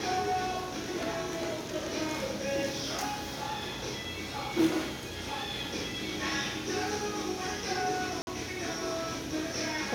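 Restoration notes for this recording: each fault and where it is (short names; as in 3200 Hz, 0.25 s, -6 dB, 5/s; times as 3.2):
8.22–8.27 gap 51 ms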